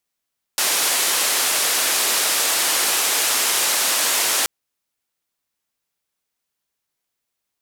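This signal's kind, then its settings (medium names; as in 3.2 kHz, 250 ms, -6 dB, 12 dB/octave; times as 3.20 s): noise band 390–12000 Hz, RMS -19.5 dBFS 3.88 s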